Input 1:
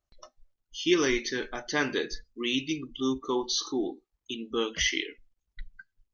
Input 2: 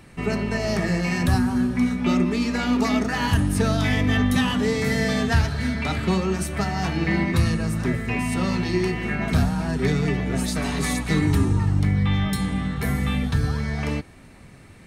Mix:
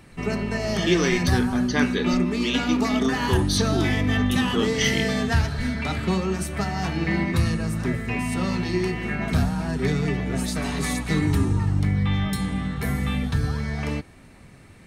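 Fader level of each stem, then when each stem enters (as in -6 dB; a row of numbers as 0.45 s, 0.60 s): +2.5 dB, -1.5 dB; 0.00 s, 0.00 s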